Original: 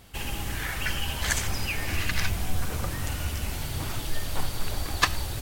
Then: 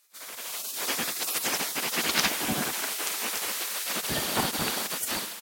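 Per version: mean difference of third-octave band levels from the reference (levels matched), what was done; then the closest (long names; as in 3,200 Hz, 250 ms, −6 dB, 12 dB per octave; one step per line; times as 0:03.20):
9.0 dB: gate on every frequency bin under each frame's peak −25 dB weak
dynamic equaliser 230 Hz, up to +5 dB, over −57 dBFS, Q 2.2
automatic gain control gain up to 11 dB
on a send: repeating echo 103 ms, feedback 46%, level −19.5 dB
on the sum: level −2.5 dB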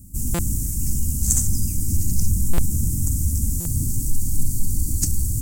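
15.0 dB: elliptic band-stop filter 250–7,500 Hz, stop band 40 dB
dynamic equaliser 5,500 Hz, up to +6 dB, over −54 dBFS, Q 0.79
in parallel at −4 dB: soft clipping −27 dBFS, distortion −10 dB
on the sum: buffer that repeats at 0:00.34/0:02.53/0:03.60, samples 256, times 8
level +7 dB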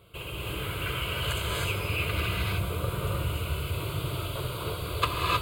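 5.5 dB: high-pass filter 140 Hz 12 dB per octave
spectral tilt −2 dB per octave
phaser with its sweep stopped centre 1,200 Hz, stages 8
reverb whose tail is shaped and stops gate 340 ms rising, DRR −3.5 dB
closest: third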